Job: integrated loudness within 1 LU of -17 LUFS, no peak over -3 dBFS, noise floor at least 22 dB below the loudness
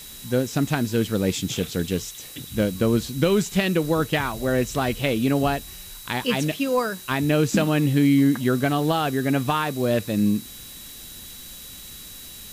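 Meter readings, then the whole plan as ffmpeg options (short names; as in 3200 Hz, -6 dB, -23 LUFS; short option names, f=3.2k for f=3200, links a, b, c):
steady tone 3900 Hz; tone level -45 dBFS; noise floor -41 dBFS; noise floor target -45 dBFS; loudness -23.0 LUFS; peak -8.0 dBFS; loudness target -17.0 LUFS
-> -af "bandreject=f=3.9k:w=30"
-af "afftdn=nr=6:nf=-41"
-af "volume=6dB,alimiter=limit=-3dB:level=0:latency=1"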